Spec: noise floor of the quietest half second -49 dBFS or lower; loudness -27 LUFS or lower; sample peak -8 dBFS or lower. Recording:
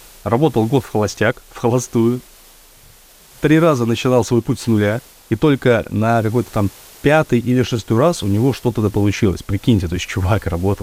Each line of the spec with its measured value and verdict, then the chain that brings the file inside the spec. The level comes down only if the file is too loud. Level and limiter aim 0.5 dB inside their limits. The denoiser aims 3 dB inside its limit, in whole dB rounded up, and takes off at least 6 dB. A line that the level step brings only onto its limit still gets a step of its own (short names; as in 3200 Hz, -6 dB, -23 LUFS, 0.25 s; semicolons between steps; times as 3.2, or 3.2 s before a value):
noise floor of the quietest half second -45 dBFS: fail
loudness -17.0 LUFS: fail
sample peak -2.0 dBFS: fail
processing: gain -10.5 dB